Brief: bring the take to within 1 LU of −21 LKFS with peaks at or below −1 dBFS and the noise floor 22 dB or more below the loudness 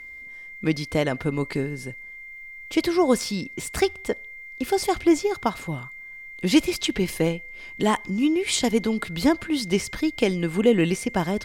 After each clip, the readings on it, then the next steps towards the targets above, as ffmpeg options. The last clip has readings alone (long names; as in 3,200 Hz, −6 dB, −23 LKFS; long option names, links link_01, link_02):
interfering tone 2,100 Hz; level of the tone −38 dBFS; integrated loudness −24.0 LKFS; sample peak −5.5 dBFS; target loudness −21.0 LKFS
→ -af "bandreject=frequency=2100:width=30"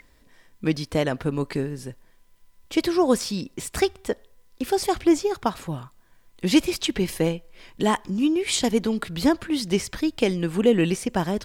interfering tone none found; integrated loudness −24.5 LKFS; sample peak −5.5 dBFS; target loudness −21.0 LKFS
→ -af "volume=3.5dB"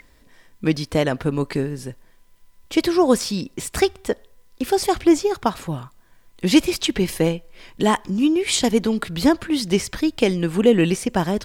integrated loudness −21.0 LKFS; sample peak −2.0 dBFS; background noise floor −54 dBFS